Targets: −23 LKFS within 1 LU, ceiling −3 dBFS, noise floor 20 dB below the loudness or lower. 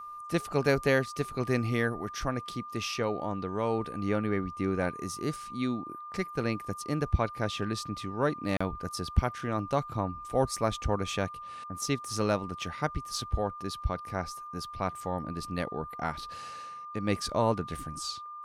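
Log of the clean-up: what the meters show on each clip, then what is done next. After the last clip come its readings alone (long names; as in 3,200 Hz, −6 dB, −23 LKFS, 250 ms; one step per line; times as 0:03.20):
number of dropouts 1; longest dropout 35 ms; interfering tone 1,200 Hz; level of the tone −40 dBFS; integrated loudness −32.0 LKFS; sample peak −11.0 dBFS; target loudness −23.0 LKFS
→ repair the gap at 0:08.57, 35 ms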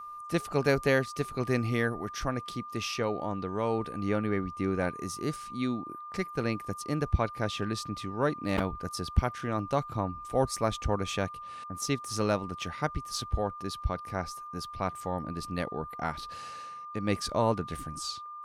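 number of dropouts 0; interfering tone 1,200 Hz; level of the tone −40 dBFS
→ notch filter 1,200 Hz, Q 30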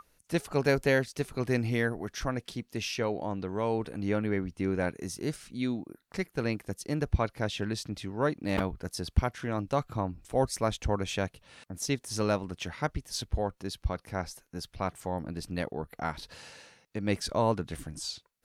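interfering tone none found; integrated loudness −32.5 LKFS; sample peak −11.5 dBFS; target loudness −23.0 LKFS
→ level +9.5 dB
brickwall limiter −3 dBFS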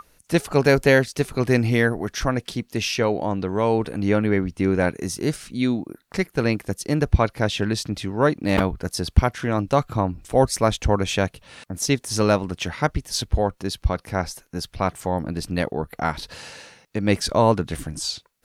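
integrated loudness −23.0 LKFS; sample peak −3.0 dBFS; background noise floor −61 dBFS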